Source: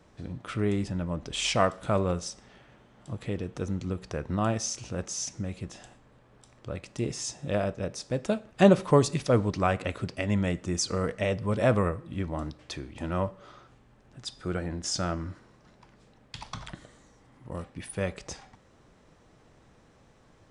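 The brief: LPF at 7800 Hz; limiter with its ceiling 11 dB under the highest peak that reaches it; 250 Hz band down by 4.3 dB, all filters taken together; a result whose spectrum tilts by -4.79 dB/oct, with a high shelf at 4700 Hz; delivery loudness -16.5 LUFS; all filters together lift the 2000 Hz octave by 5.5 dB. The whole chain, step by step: LPF 7800 Hz; bell 250 Hz -6.5 dB; bell 2000 Hz +8 dB; high shelf 4700 Hz -5 dB; gain +16.5 dB; limiter -1 dBFS

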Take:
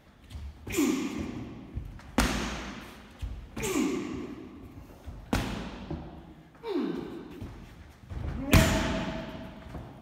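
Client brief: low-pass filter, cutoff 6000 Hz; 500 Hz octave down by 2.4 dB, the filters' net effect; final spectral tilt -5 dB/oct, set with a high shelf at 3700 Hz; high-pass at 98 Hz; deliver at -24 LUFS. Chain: HPF 98 Hz; LPF 6000 Hz; bell 500 Hz -3.5 dB; high shelf 3700 Hz -5.5 dB; gain +9.5 dB

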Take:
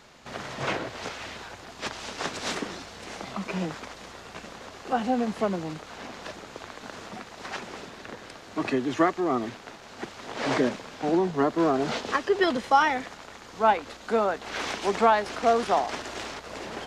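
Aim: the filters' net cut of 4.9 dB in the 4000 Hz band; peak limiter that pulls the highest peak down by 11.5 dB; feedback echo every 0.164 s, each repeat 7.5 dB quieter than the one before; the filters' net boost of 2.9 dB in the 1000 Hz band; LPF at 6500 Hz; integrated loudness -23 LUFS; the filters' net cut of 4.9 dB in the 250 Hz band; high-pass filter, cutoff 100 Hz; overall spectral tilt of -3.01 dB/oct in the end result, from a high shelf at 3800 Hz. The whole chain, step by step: HPF 100 Hz; LPF 6500 Hz; bell 250 Hz -7 dB; bell 1000 Hz +4.5 dB; high shelf 3800 Hz +3.5 dB; bell 4000 Hz -8.5 dB; limiter -17 dBFS; feedback echo 0.164 s, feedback 42%, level -7.5 dB; gain +7.5 dB

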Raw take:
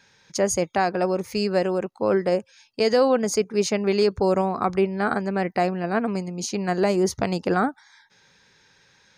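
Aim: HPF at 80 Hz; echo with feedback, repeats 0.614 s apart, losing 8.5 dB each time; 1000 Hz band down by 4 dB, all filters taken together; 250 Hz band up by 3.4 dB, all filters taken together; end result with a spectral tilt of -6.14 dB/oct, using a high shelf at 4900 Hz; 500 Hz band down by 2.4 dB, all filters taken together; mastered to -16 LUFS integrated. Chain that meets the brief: HPF 80 Hz; bell 250 Hz +6.5 dB; bell 500 Hz -4.5 dB; bell 1000 Hz -4 dB; high shelf 4900 Hz -7 dB; feedback echo 0.614 s, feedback 38%, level -8.5 dB; gain +7.5 dB

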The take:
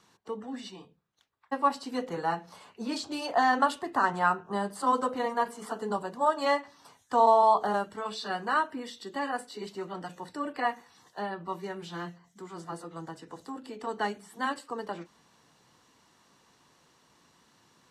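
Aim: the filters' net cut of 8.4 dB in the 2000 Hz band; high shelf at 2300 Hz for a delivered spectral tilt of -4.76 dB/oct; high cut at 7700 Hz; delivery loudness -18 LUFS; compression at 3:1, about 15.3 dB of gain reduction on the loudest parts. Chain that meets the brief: LPF 7700 Hz; bell 2000 Hz -7.5 dB; high shelf 2300 Hz -8.5 dB; compressor 3:1, threshold -40 dBFS; gain +25 dB

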